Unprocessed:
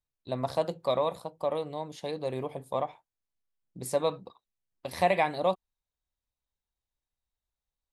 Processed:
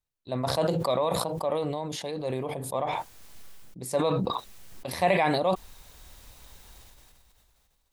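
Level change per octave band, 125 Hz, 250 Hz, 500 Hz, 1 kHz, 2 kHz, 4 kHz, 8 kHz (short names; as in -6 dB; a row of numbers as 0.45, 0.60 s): +7.5, +7.0, +2.0, +2.5, +3.5, +6.0, +7.0 dB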